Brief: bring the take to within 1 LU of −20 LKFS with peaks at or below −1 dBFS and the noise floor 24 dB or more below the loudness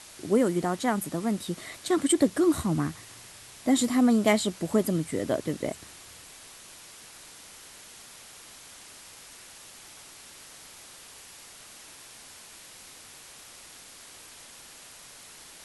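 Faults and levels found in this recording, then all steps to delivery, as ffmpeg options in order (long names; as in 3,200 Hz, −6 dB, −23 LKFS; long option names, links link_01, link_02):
background noise floor −49 dBFS; target noise floor −51 dBFS; integrated loudness −26.5 LKFS; sample peak −9.5 dBFS; target loudness −20.0 LKFS
→ -af "afftdn=noise_reduction=6:noise_floor=-49"
-af "volume=6.5dB"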